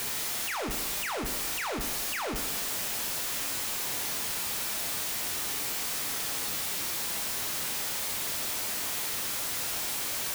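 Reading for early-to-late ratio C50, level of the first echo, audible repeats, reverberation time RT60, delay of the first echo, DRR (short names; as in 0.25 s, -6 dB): 7.0 dB, none, none, 1.1 s, none, 3.5 dB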